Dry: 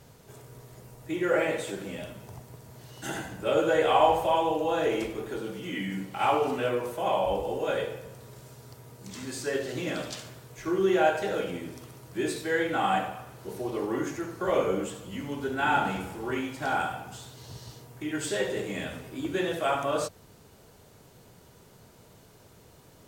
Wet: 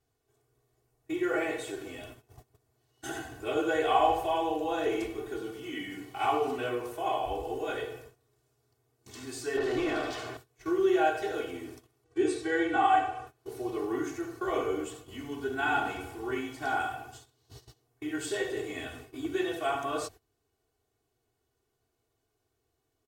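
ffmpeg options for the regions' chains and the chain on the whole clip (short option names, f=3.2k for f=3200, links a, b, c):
-filter_complex "[0:a]asettb=1/sr,asplit=3[a][b][c];[a]atrim=end=9.574[d];[b]atrim=start=9.57:end=10.37,asetpts=PTS-STARTPTS,afade=t=in:d=0.004:c=qsin,afade=t=out:st=0.796:d=0.004:c=qsin,asplit=2[e][f];[f]highpass=f=720:p=1,volume=23dB,asoftclip=type=tanh:threshold=-20dB[g];[e][g]amix=inputs=2:normalize=0,lowpass=f=1.7k:p=1,volume=-6dB,tiltshelf=f=1.4k:g=3[h];[c]atrim=start=10.366[i];[d][h]acrossfade=d=0.004:c1=hsin:c2=qsin[j];[j][i]acrossfade=d=0.004:c1=qsin:c2=hsin,asettb=1/sr,asplit=3[k][l][m];[k]atrim=end=12.044[n];[l]atrim=start=12.04:end=13.27,asetpts=PTS-STARTPTS,afade=t=in:d=0.004:c=qsin,afade=t=out:st=1.226:d=0.004:c=qsin,lowpass=6.9k,aecho=1:1:2.6:0.74,atrim=end_sample=54243,aeval=exprs='val(0)+0.00316*sin(2*PI*480*n/s)':c=same[o];[m]atrim=start=13.266[p];[n][o]acrossfade=d=0.004:c1=hsin:c2=qsin[q];[q][p]acrossfade=d=0.004:c1=qsin:c2=hsin,agate=range=-20dB:threshold=-42dB:ratio=16:detection=peak,aecho=1:1:2.7:0.87,volume=-6dB"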